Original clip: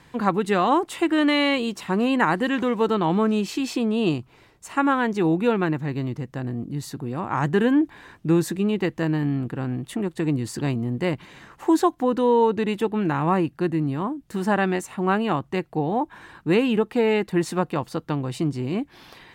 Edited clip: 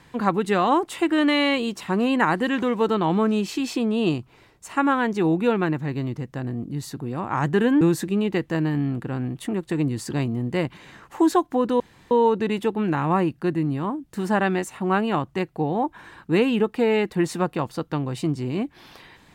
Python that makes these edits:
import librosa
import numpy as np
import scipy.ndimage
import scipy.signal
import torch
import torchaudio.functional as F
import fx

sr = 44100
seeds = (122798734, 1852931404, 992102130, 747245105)

y = fx.edit(x, sr, fx.cut(start_s=7.81, length_s=0.48),
    fx.insert_room_tone(at_s=12.28, length_s=0.31), tone=tone)